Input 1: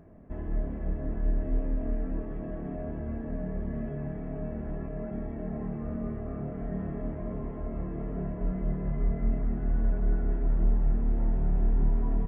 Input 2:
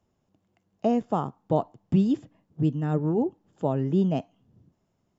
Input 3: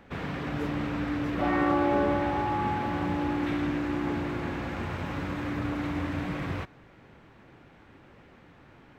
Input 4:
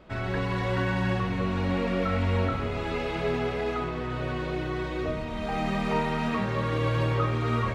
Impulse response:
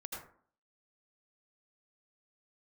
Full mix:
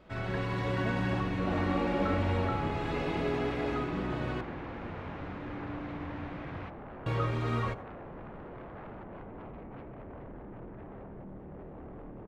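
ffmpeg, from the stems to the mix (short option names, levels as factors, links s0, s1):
-filter_complex "[0:a]alimiter=level_in=1.12:limit=0.0631:level=0:latency=1:release=95,volume=0.891,aeval=exprs='0.0562*sin(PI/2*4.47*val(0)/0.0562)':c=same,adelay=600,volume=0.112,asplit=2[s0][s1];[s1]volume=0.473[s2];[1:a]volume=0.141[s3];[2:a]lowpass=3700,adelay=50,volume=0.355[s4];[3:a]volume=0.501,asplit=3[s5][s6][s7];[s5]atrim=end=4.41,asetpts=PTS-STARTPTS,afade=t=out:st=4.406:d=0.004:c=hsin[s8];[s6]atrim=start=4.41:end=7.06,asetpts=PTS-STARTPTS,volume=0[s9];[s7]atrim=start=7.06,asetpts=PTS-STARTPTS,afade=t=in:d=0.004:c=hsin[s10];[s8][s9][s10]concat=n=3:v=0:a=1,asplit=2[s11][s12];[s12]volume=0.211[s13];[4:a]atrim=start_sample=2205[s14];[s2][s13]amix=inputs=2:normalize=0[s15];[s15][s14]afir=irnorm=-1:irlink=0[s16];[s0][s3][s4][s11][s16]amix=inputs=5:normalize=0"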